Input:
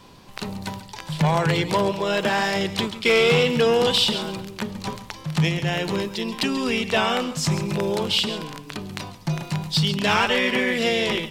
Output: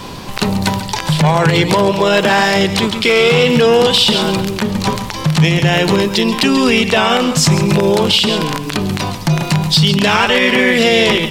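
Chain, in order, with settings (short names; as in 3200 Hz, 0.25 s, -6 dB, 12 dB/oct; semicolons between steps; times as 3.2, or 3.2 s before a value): compressor 2:1, threshold -34 dBFS, peak gain reduction 11 dB; maximiser +20.5 dB; gain -1 dB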